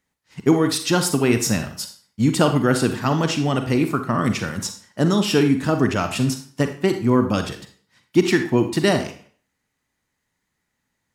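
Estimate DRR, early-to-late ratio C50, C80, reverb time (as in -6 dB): 7.0 dB, 8.5 dB, 13.0 dB, 0.50 s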